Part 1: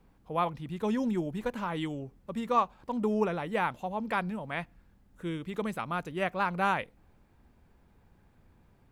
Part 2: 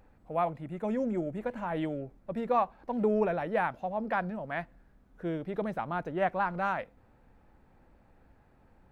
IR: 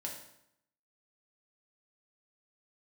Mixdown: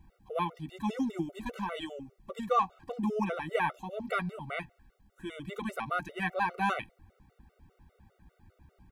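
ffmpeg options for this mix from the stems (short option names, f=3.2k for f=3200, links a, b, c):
-filter_complex "[0:a]volume=2.5dB[a];[1:a]equalizer=f=76:t=o:w=2.2:g=14,asplit=2[b][c];[c]adelay=11.7,afreqshift=-1.4[d];[b][d]amix=inputs=2:normalize=1,volume=-1,volume=-3.5dB[e];[a][e]amix=inputs=2:normalize=0,afftfilt=real='re*gt(sin(2*PI*5*pts/sr)*(1-2*mod(floor(b*sr/1024/380),2)),0)':imag='im*gt(sin(2*PI*5*pts/sr)*(1-2*mod(floor(b*sr/1024/380),2)),0)':win_size=1024:overlap=0.75"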